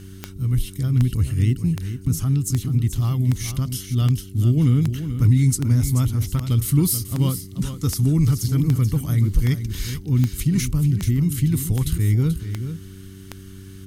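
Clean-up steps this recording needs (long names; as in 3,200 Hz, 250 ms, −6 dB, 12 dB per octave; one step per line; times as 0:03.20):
click removal
hum removal 95.9 Hz, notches 4
echo removal 433 ms −10 dB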